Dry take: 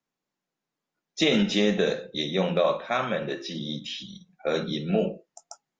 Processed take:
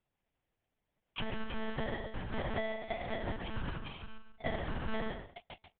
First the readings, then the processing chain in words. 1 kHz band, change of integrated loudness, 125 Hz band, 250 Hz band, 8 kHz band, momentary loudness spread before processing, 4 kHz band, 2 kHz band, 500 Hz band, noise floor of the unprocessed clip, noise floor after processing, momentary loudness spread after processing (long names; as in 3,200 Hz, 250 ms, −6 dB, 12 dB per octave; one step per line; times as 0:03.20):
−9.0 dB, −13.5 dB, −9.0 dB, −15.0 dB, can't be measured, 13 LU, −17.0 dB, −9.0 dB, −14.5 dB, below −85 dBFS, below −85 dBFS, 10 LU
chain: samples in bit-reversed order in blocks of 32 samples
high-pass filter 100 Hz 12 dB per octave
low-shelf EQ 290 Hz −11.5 dB
in parallel at 0 dB: brickwall limiter −16.5 dBFS, peak gain reduction 7.5 dB
on the sum: downward compressor 12 to 1, threshold −31 dBFS, peak gain reduction 17 dB
amplitude modulation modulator 52 Hz, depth 35%
high-frequency loss of the air 140 metres
on a send: single-tap delay 137 ms −8.5 dB
on the sum: one-pitch LPC vocoder at 8 kHz 220 Hz
level +5.5 dB